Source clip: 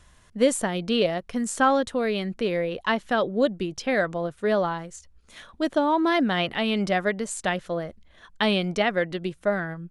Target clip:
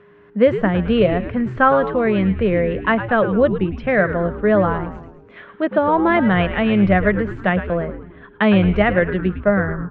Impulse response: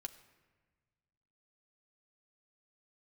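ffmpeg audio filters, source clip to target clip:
-filter_complex "[0:a]highpass=f=130:w=0.5412,highpass=f=130:w=1.3066,equalizer=f=190:t=q:w=4:g=7,equalizer=f=280:t=q:w=4:g=-7,equalizer=f=840:t=q:w=4:g=-4,lowpass=f=2.3k:w=0.5412,lowpass=f=2.3k:w=1.3066,aeval=exprs='val(0)+0.00178*sin(2*PI*410*n/s)':c=same,asplit=7[a][b][c][d][e][f][g];[b]adelay=108,afreqshift=-110,volume=-10.5dB[h];[c]adelay=216,afreqshift=-220,volume=-16.2dB[i];[d]adelay=324,afreqshift=-330,volume=-21.9dB[j];[e]adelay=432,afreqshift=-440,volume=-27.5dB[k];[f]adelay=540,afreqshift=-550,volume=-33.2dB[l];[g]adelay=648,afreqshift=-660,volume=-38.9dB[m];[a][h][i][j][k][l][m]amix=inputs=7:normalize=0,volume=7.5dB"

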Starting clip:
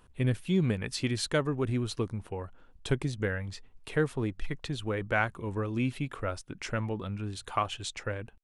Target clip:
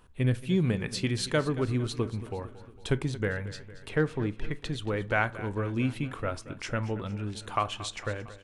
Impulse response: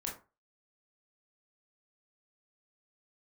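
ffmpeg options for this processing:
-filter_complex "[0:a]aecho=1:1:228|456|684|912|1140:0.158|0.0903|0.0515|0.0294|0.0167,asettb=1/sr,asplit=3[a][b][c];[a]atrim=end=3.894[d];[b]atrim=start=3.89:end=4.53,asetpts=PTS-STARTPTS,afade=t=in:d=0.004:c=qsin,afade=t=out:st=0.636:d=0.004:c=qsin,adynamicsmooth=sensitivity=6.5:basefreq=7k[e];[c]atrim=start=4.526[f];[d][e]acrossfade=d=0.004:c1=hsin:c2=qsin[g];[g][f]acrossfade=d=0.004:c1=qsin:c2=hsin,asplit=2[h][i];[1:a]atrim=start_sample=2205,lowpass=7k[j];[i][j]afir=irnorm=-1:irlink=0,volume=-13.5dB[k];[h][k]amix=inputs=2:normalize=0"

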